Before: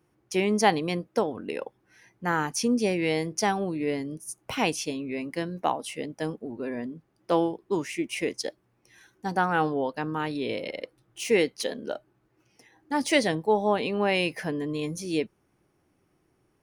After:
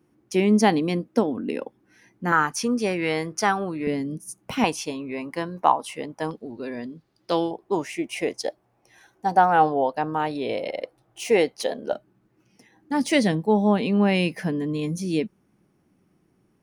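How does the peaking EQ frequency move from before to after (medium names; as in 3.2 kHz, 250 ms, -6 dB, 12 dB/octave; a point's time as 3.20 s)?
peaking EQ +11.5 dB 0.86 oct
250 Hz
from 2.32 s 1.3 kHz
from 3.87 s 200 Hz
from 4.64 s 990 Hz
from 6.31 s 4.3 kHz
from 7.51 s 720 Hz
from 11.93 s 200 Hz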